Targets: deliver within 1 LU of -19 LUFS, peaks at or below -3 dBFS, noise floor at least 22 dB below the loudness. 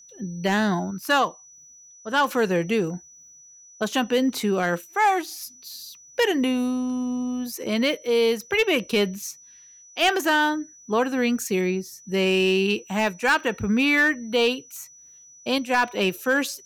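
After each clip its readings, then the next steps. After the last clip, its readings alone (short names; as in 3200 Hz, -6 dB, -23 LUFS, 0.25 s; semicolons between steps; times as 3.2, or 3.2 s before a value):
clipped 0.4%; flat tops at -13.0 dBFS; steady tone 5900 Hz; tone level -47 dBFS; loudness -23.0 LUFS; peak -13.0 dBFS; loudness target -19.0 LUFS
-> clip repair -13 dBFS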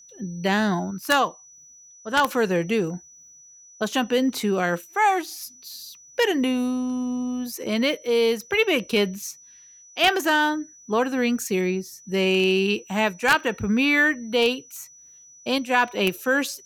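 clipped 0.0%; steady tone 5900 Hz; tone level -47 dBFS
-> notch 5900 Hz, Q 30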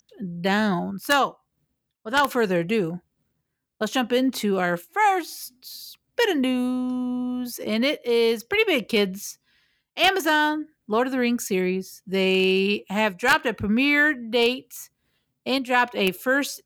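steady tone none; loudness -23.0 LUFS; peak -4.0 dBFS; loudness target -19.0 LUFS
-> gain +4 dB; limiter -3 dBFS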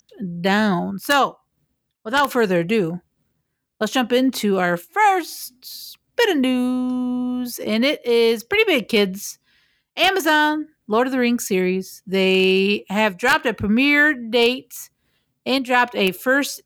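loudness -19.0 LUFS; peak -3.0 dBFS; noise floor -75 dBFS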